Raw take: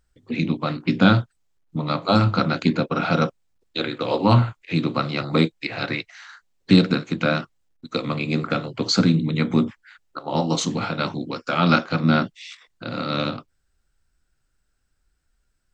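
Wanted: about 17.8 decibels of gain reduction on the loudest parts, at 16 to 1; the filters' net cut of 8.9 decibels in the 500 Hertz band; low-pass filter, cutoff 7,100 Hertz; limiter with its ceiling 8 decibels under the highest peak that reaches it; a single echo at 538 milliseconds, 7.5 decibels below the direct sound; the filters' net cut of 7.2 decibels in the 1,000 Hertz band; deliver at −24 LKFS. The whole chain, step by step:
low-pass filter 7,100 Hz
parametric band 500 Hz −9 dB
parametric band 1,000 Hz −8.5 dB
downward compressor 16 to 1, threshold −29 dBFS
brickwall limiter −23.5 dBFS
single-tap delay 538 ms −7.5 dB
level +11.5 dB

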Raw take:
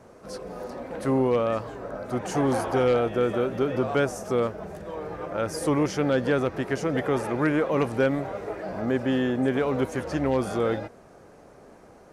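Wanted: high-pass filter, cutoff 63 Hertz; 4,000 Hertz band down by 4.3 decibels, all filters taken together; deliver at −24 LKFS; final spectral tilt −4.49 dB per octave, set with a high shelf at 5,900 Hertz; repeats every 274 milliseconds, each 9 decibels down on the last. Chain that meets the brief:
high-pass filter 63 Hz
parametric band 4,000 Hz −8 dB
high-shelf EQ 5,900 Hz +5 dB
repeating echo 274 ms, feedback 35%, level −9 dB
level +1.5 dB

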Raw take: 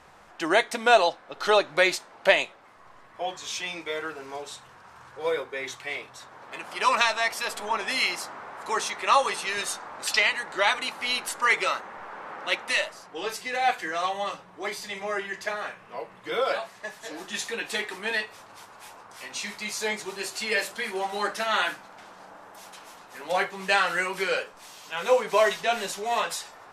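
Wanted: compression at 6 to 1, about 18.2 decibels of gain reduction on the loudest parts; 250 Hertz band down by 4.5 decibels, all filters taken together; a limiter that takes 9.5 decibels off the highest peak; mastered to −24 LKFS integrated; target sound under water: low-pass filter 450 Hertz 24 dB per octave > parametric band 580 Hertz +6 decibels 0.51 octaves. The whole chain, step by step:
parametric band 250 Hz −7.5 dB
downward compressor 6 to 1, threshold −35 dBFS
brickwall limiter −29 dBFS
low-pass filter 450 Hz 24 dB per octave
parametric band 580 Hz +6 dB 0.51 octaves
level +26 dB

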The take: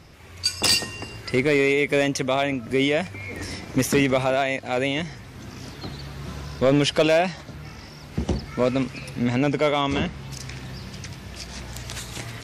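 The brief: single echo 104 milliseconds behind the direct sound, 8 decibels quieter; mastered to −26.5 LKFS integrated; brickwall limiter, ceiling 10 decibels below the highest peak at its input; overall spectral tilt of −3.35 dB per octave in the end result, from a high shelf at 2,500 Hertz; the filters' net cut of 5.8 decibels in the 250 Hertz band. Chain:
parametric band 250 Hz −7 dB
high-shelf EQ 2,500 Hz +5 dB
brickwall limiter −15.5 dBFS
single-tap delay 104 ms −8 dB
level +1 dB

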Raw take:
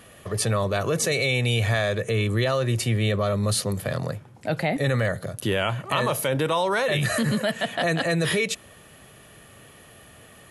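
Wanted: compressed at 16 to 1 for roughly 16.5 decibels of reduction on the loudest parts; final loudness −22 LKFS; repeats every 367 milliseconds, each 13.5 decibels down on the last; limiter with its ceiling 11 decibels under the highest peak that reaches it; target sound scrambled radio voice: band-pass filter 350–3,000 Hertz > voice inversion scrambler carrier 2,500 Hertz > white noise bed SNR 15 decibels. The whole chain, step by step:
downward compressor 16 to 1, threshold −36 dBFS
brickwall limiter −32.5 dBFS
band-pass filter 350–3,000 Hz
repeating echo 367 ms, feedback 21%, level −13.5 dB
voice inversion scrambler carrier 2,500 Hz
white noise bed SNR 15 dB
level +22.5 dB

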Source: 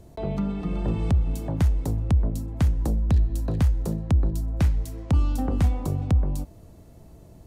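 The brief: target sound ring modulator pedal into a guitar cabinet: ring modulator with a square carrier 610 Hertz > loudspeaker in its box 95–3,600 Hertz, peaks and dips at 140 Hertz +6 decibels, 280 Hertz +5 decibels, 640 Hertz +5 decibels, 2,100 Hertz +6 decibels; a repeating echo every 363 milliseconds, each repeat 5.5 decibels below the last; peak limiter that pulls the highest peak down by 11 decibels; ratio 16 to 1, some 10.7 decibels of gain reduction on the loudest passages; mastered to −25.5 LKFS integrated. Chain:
downward compressor 16 to 1, threshold −26 dBFS
brickwall limiter −28.5 dBFS
repeating echo 363 ms, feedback 53%, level −5.5 dB
ring modulator with a square carrier 610 Hz
loudspeaker in its box 95–3,600 Hz, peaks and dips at 140 Hz +6 dB, 280 Hz +5 dB, 640 Hz +5 dB, 2,100 Hz +6 dB
level +4.5 dB

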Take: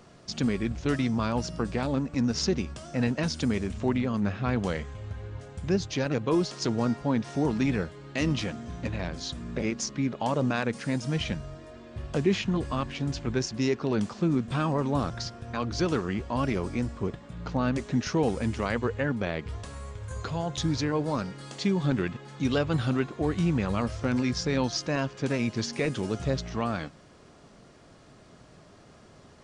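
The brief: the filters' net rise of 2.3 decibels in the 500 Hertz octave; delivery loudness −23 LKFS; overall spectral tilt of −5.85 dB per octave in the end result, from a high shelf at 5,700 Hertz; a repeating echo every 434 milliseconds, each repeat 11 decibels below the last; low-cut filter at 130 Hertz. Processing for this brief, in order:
high-pass filter 130 Hz
parametric band 500 Hz +3 dB
high-shelf EQ 5,700 Hz −8.5 dB
repeating echo 434 ms, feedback 28%, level −11 dB
level +5.5 dB

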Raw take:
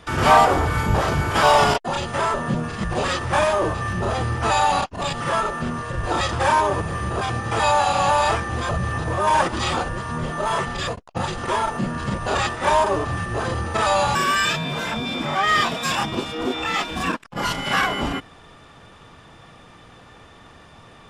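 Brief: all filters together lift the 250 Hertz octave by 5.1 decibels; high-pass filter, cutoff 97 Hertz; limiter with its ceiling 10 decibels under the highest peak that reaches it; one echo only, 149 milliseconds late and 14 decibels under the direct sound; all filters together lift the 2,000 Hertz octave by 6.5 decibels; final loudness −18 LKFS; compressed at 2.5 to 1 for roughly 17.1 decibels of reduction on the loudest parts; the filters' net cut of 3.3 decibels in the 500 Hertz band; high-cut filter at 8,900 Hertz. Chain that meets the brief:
high-pass filter 97 Hz
low-pass filter 8,900 Hz
parametric band 250 Hz +8.5 dB
parametric band 500 Hz −7 dB
parametric band 2,000 Hz +8.5 dB
downward compressor 2.5 to 1, threshold −35 dBFS
brickwall limiter −28 dBFS
single-tap delay 149 ms −14 dB
level +18.5 dB

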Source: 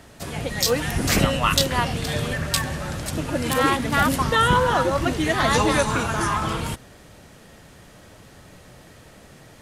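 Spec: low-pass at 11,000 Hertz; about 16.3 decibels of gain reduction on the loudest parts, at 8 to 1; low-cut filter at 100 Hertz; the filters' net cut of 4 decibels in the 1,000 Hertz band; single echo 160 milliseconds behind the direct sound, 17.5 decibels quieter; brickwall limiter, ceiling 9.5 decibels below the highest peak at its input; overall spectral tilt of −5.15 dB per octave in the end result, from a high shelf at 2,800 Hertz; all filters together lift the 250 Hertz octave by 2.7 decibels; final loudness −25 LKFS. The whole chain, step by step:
high-pass filter 100 Hz
low-pass filter 11,000 Hz
parametric band 250 Hz +4 dB
parametric band 1,000 Hz −4.5 dB
high-shelf EQ 2,800 Hz −4.5 dB
downward compressor 8 to 1, threshold −32 dBFS
brickwall limiter −27 dBFS
single-tap delay 160 ms −17.5 dB
level +12 dB

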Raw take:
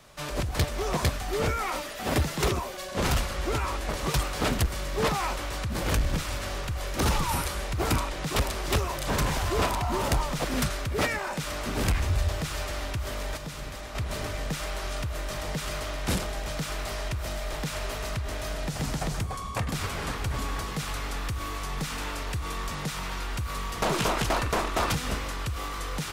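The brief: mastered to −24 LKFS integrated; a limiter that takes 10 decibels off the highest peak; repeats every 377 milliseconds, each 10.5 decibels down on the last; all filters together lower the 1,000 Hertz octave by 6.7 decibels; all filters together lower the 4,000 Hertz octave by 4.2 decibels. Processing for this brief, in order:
parametric band 1,000 Hz −8.5 dB
parametric band 4,000 Hz −5 dB
brickwall limiter −27.5 dBFS
repeating echo 377 ms, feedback 30%, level −10.5 dB
level +12 dB

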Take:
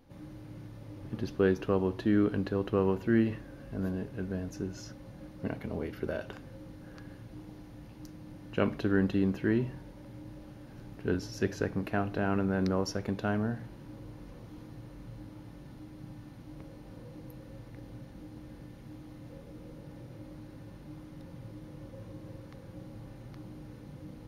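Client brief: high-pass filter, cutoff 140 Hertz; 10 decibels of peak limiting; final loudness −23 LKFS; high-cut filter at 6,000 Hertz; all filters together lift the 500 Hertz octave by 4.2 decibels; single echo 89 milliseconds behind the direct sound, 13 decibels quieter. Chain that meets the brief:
high-pass filter 140 Hz
low-pass filter 6,000 Hz
parametric band 500 Hz +5.5 dB
brickwall limiter −20.5 dBFS
single-tap delay 89 ms −13 dB
level +11 dB

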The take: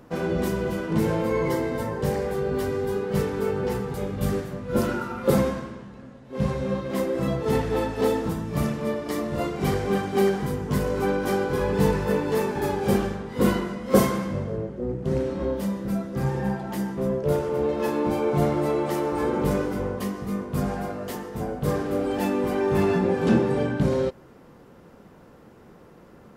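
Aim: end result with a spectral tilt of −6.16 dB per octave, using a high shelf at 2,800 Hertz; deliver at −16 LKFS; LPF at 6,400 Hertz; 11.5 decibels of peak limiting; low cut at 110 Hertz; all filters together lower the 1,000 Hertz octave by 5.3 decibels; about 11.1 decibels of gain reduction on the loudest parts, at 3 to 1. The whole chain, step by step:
high-pass filter 110 Hz
low-pass filter 6,400 Hz
parametric band 1,000 Hz −6 dB
high-shelf EQ 2,800 Hz −6 dB
downward compressor 3 to 1, threshold −30 dBFS
level +21.5 dB
brickwall limiter −8 dBFS

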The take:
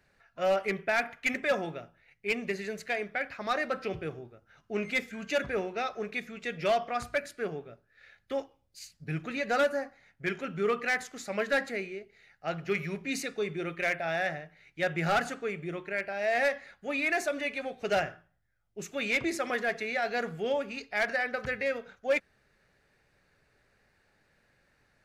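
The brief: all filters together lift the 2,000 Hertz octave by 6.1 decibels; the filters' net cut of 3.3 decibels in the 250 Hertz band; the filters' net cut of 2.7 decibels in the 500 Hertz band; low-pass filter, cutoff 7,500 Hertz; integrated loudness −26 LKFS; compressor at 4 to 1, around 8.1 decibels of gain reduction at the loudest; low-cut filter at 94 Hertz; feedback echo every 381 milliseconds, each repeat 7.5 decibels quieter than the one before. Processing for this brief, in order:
high-pass filter 94 Hz
low-pass filter 7,500 Hz
parametric band 250 Hz −3.5 dB
parametric band 500 Hz −3 dB
parametric band 2,000 Hz +7.5 dB
downward compressor 4 to 1, threshold −28 dBFS
repeating echo 381 ms, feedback 42%, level −7.5 dB
level +6.5 dB

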